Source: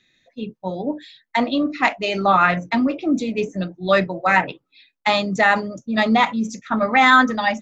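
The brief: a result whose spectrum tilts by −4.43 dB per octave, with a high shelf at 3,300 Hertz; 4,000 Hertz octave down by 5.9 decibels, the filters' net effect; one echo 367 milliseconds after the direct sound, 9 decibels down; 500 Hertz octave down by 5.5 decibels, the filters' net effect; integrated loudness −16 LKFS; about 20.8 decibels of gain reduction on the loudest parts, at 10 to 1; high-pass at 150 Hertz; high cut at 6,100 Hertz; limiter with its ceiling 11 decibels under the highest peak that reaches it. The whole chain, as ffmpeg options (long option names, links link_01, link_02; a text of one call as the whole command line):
ffmpeg -i in.wav -af "highpass=150,lowpass=6100,equalizer=frequency=500:width_type=o:gain=-7,highshelf=frequency=3300:gain=-5.5,equalizer=frequency=4000:width_type=o:gain=-3,acompressor=threshold=-32dB:ratio=10,alimiter=level_in=3dB:limit=-24dB:level=0:latency=1,volume=-3dB,aecho=1:1:367:0.355,volume=21.5dB" out.wav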